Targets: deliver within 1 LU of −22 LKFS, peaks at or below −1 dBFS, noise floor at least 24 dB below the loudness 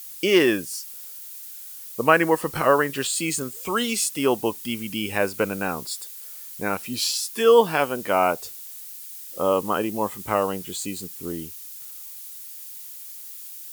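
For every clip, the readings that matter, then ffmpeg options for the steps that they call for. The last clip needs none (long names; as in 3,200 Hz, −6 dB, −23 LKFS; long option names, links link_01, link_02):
background noise floor −40 dBFS; target noise floor −47 dBFS; integrated loudness −23.0 LKFS; sample peak −1.0 dBFS; target loudness −22.0 LKFS
→ -af "afftdn=noise_reduction=7:noise_floor=-40"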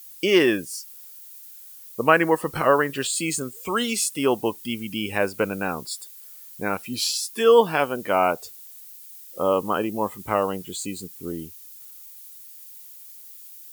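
background noise floor −44 dBFS; target noise floor −48 dBFS
→ -af "afftdn=noise_reduction=6:noise_floor=-44"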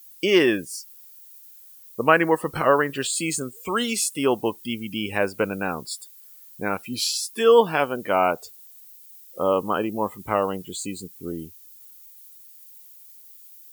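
background noise floor −48 dBFS; integrated loudness −23.0 LKFS; sample peak −1.0 dBFS; target loudness −22.0 LKFS
→ -af "volume=1dB,alimiter=limit=-1dB:level=0:latency=1"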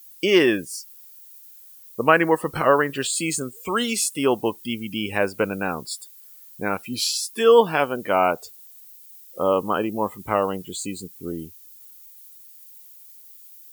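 integrated loudness −22.0 LKFS; sample peak −1.0 dBFS; background noise floor −47 dBFS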